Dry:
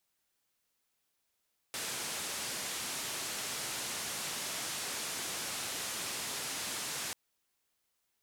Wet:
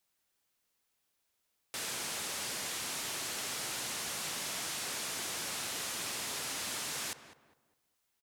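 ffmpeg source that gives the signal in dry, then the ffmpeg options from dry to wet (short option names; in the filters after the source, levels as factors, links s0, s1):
-f lavfi -i "anoisesrc=c=white:d=5.39:r=44100:seed=1,highpass=f=100,lowpass=f=9700,volume=-30.2dB"
-filter_complex "[0:a]asplit=2[s0][s1];[s1]adelay=203,lowpass=f=1600:p=1,volume=0.299,asplit=2[s2][s3];[s3]adelay=203,lowpass=f=1600:p=1,volume=0.35,asplit=2[s4][s5];[s5]adelay=203,lowpass=f=1600:p=1,volume=0.35,asplit=2[s6][s7];[s7]adelay=203,lowpass=f=1600:p=1,volume=0.35[s8];[s0][s2][s4][s6][s8]amix=inputs=5:normalize=0"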